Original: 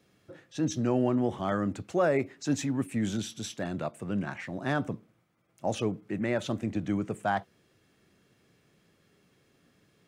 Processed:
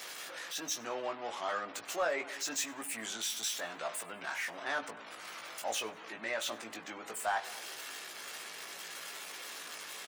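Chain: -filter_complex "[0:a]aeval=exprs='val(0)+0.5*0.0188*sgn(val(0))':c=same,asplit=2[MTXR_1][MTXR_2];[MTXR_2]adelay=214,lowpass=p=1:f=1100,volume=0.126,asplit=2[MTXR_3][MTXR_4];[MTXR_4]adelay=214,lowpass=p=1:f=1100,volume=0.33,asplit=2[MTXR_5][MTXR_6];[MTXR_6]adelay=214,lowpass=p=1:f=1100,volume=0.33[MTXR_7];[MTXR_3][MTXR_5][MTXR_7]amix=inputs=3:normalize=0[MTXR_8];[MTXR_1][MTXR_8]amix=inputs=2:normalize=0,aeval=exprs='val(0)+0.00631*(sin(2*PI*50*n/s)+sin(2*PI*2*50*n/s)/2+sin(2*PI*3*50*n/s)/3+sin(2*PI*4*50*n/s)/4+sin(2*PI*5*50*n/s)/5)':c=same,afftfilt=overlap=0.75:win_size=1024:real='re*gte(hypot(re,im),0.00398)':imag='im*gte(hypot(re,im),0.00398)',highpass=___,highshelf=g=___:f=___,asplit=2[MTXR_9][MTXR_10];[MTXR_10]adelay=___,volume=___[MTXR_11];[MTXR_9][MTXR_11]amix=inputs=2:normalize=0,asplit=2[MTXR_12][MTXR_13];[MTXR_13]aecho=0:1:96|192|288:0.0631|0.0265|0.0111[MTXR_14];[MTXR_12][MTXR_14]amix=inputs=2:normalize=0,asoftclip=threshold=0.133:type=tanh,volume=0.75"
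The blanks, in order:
820, 5.5, 7400, 18, 0.562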